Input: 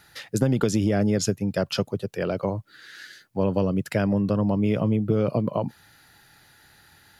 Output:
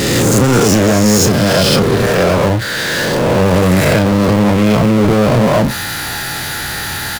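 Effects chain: reverse spectral sustain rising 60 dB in 1.20 s; power-law waveshaper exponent 0.35; doubling 33 ms -11 dB; trim +2 dB

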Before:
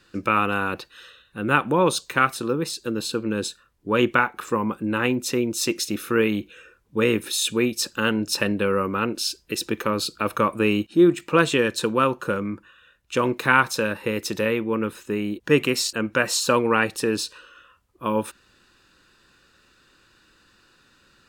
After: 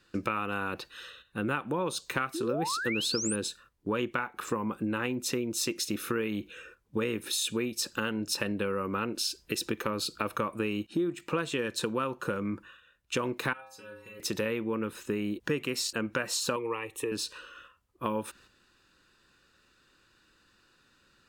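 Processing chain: gate -52 dBFS, range -7 dB; compression 6:1, threshold -28 dBFS, peak gain reduction 16 dB; 2.34–3.36 s: painted sound rise 300–10000 Hz -34 dBFS; 13.53–14.20 s: inharmonic resonator 96 Hz, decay 0.83 s, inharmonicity 0.008; 16.56–17.12 s: static phaser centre 1 kHz, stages 8

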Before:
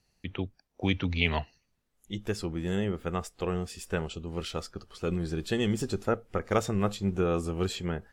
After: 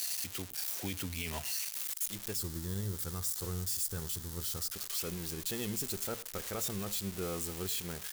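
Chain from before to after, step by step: zero-crossing glitches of -16.5 dBFS; 2.35–4.72 s: fifteen-band graphic EQ 100 Hz +12 dB, 630 Hz -8 dB, 2.5 kHz -11 dB; peak limiter -21 dBFS, peak gain reduction 10.5 dB; delay 99 ms -21.5 dB; trim -6 dB

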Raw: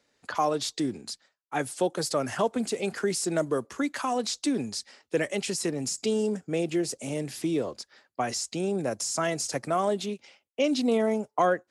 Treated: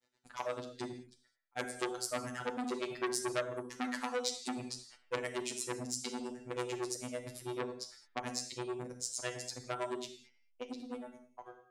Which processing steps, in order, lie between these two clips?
fade out at the end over 2.42 s; hum notches 50/100/150/200/250/300/350 Hz; reverb removal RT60 0.84 s; granulator 100 ms, grains 9 per s, spray 24 ms, pitch spread up and down by 0 st; robot voice 124 Hz; in parallel at -11 dB: hysteresis with a dead band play -44 dBFS; on the sum: gated-style reverb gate 240 ms falling, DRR 4 dB; transformer saturation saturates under 3.1 kHz; trim -2.5 dB

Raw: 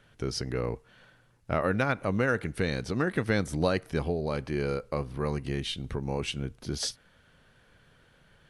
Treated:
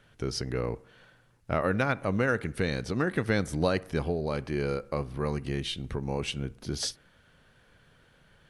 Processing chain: bucket-brigade echo 63 ms, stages 1024, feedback 59%, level -24 dB

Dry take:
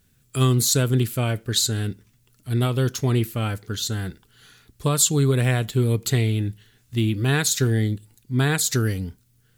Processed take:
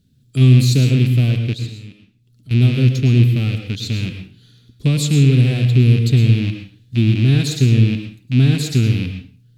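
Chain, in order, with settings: rattle on loud lows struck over -26 dBFS, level -12 dBFS; treble shelf 2.7 kHz -8.5 dB; 1.53–2.51 s: compression 2:1, threshold -52 dBFS, peak gain reduction 16.5 dB; ten-band graphic EQ 125 Hz +10 dB, 250 Hz +10 dB, 1 kHz -11 dB, 2 kHz -5 dB, 4 kHz +12 dB; reverberation RT60 0.40 s, pre-delay 98 ms, DRR 6 dB; trim -3.5 dB

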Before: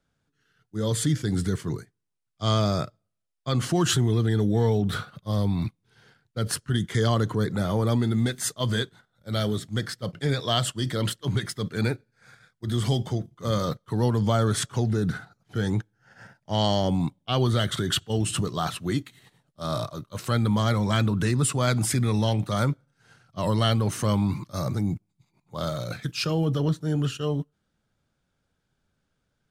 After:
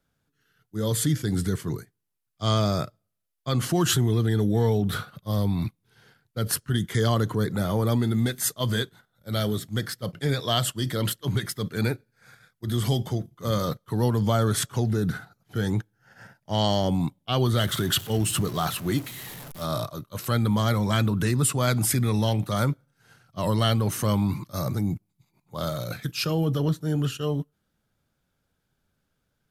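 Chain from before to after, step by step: 17.57–19.65 s: jump at every zero crossing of -36 dBFS; peaking EQ 12 kHz +14 dB 0.28 oct

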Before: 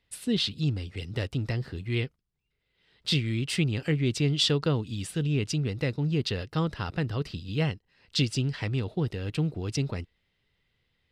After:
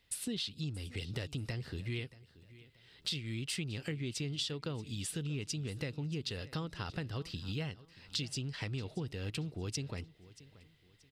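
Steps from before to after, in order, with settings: treble shelf 3.4 kHz +8 dB; compression 5:1, threshold -38 dBFS, peak gain reduction 19 dB; on a send: feedback delay 630 ms, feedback 33%, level -19 dB; on the sum: trim +1 dB

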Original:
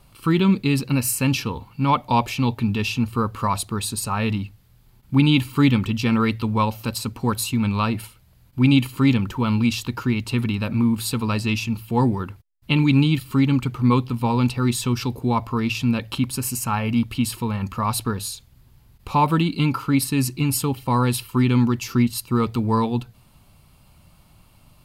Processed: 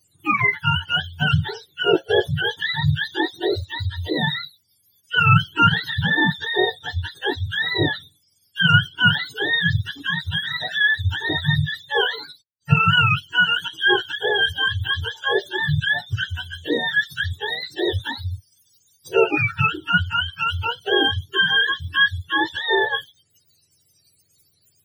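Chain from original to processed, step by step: spectrum inverted on a logarithmic axis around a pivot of 630 Hz; spectral noise reduction 18 dB; trim +3 dB

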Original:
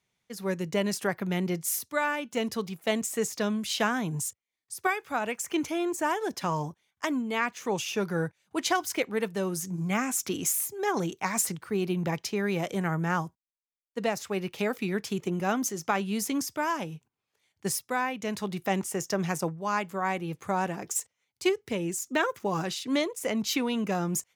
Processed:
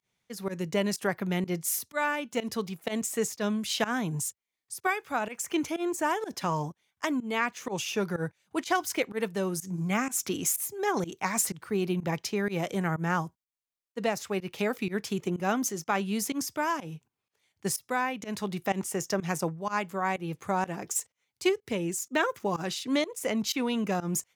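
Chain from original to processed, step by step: volume shaper 125 bpm, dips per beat 1, -22 dB, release 105 ms

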